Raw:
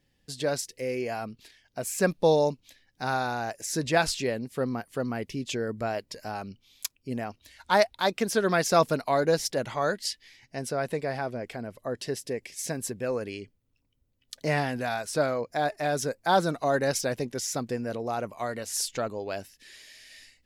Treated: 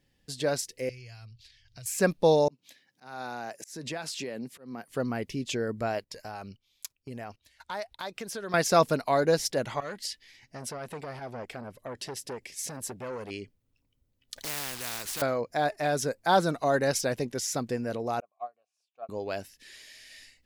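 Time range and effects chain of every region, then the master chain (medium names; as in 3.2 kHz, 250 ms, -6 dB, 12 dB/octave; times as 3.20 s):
0.89–1.86 s: FFT filter 120 Hz 0 dB, 190 Hz -25 dB, 760 Hz -27 dB, 4.6 kHz -3 dB, 12 kHz -18 dB + three bands compressed up and down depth 100%
2.48–4.89 s: high-pass 140 Hz 24 dB/octave + compression, threshold -32 dBFS + slow attack 213 ms
5.99–8.54 s: gate -52 dBFS, range -11 dB + peaking EQ 250 Hz -5 dB 1.2 oct + compression 3:1, threshold -36 dBFS
9.80–13.31 s: compression 10:1, threshold -29 dBFS + transformer saturation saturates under 1.5 kHz
14.36–15.22 s: short-mantissa float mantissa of 2-bit + spectrum-flattening compressor 4:1
18.20–19.09 s: vowel filter a + upward expansion 2.5:1, over -47 dBFS
whole clip: none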